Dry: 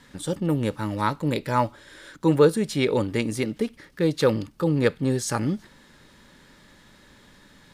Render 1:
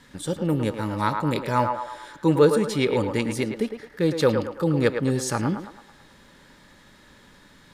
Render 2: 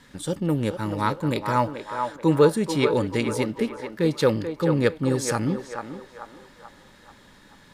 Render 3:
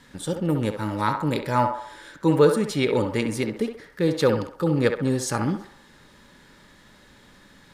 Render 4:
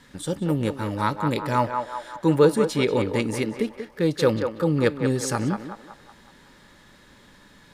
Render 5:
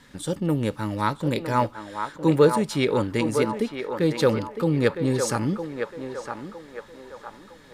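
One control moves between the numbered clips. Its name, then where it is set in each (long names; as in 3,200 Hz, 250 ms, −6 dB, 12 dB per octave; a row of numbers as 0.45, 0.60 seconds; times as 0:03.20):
feedback echo with a band-pass in the loop, delay time: 109, 435, 66, 186, 959 milliseconds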